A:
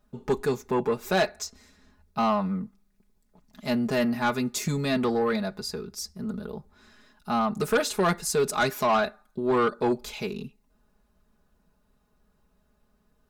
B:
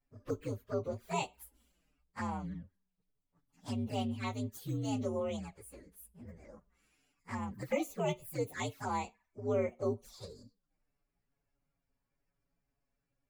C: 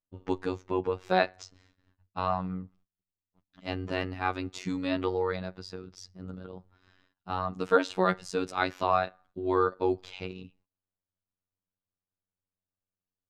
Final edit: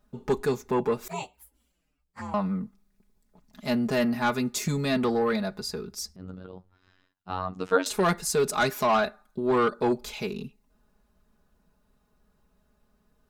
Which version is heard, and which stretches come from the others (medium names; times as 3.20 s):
A
1.08–2.34 s: from B
6.16–7.86 s: from C